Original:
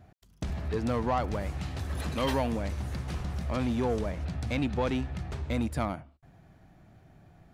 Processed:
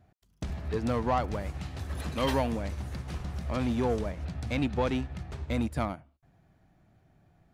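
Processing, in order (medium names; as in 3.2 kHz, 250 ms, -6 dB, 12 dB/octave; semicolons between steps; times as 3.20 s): upward expansion 1.5:1, over -43 dBFS; trim +1.5 dB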